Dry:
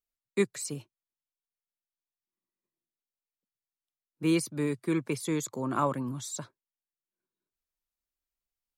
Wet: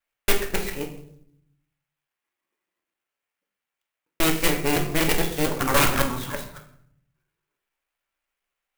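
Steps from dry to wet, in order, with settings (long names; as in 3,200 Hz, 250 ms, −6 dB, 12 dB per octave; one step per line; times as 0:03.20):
reversed piece by piece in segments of 140 ms
three-way crossover with the lows and the highs turned down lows −14 dB, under 410 Hz, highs −19 dB, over 3,000 Hz
in parallel at −5.5 dB: wrap-around overflow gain 27 dB
on the sum: parametric band 2,700 Hz +8.5 dB 1.6 octaves
harmonic generator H 3 −7 dB, 7 −11 dB, 8 −7 dB, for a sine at −11 dBFS
on a send at −2 dB: convolution reverb RT60 0.65 s, pre-delay 4 ms
on the sum: converter with an unsteady clock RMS 0.05 ms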